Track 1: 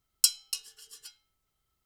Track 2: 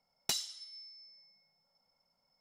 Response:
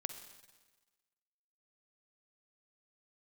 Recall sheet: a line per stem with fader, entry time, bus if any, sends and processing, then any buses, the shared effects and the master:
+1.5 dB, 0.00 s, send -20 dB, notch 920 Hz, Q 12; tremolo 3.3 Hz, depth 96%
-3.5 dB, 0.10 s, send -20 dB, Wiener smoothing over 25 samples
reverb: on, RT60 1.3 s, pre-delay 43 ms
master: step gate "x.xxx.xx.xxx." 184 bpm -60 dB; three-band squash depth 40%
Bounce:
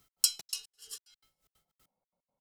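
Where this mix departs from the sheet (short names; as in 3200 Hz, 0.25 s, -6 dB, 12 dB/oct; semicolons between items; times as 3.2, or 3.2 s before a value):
stem 2 -3.5 dB -> -12.5 dB; reverb return -6.5 dB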